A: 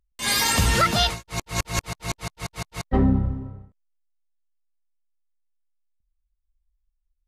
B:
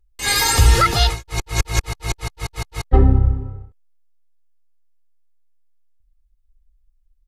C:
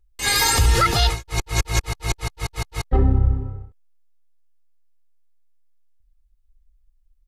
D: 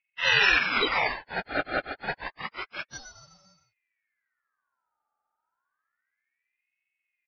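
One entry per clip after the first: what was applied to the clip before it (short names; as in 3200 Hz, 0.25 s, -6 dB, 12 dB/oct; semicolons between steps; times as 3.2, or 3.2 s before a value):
low shelf 78 Hz +9.5 dB; comb 2.4 ms, depth 69%; gain +1.5 dB
limiter -8 dBFS, peak gain reduction 6.5 dB
spectrum mirrored in octaves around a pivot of 1700 Hz; downsampling 8000 Hz; ring modulator with a swept carrier 1700 Hz, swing 40%, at 0.29 Hz; gain -1 dB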